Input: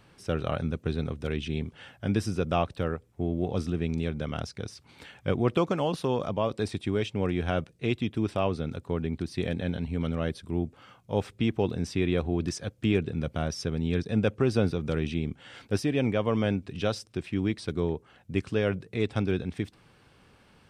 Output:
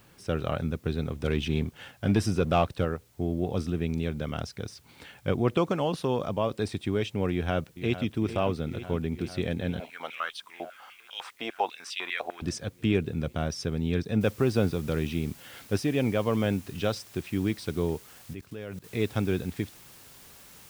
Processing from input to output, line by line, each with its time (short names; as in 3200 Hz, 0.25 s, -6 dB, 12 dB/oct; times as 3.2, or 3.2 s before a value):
1.16–2.85 sample leveller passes 1
7.31–8.14 echo throw 0.45 s, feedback 80%, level -12 dB
9.8–12.42 stepped high-pass 10 Hz 630–3000 Hz
14.21 noise floor step -65 dB -52 dB
18.33–18.84 level quantiser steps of 19 dB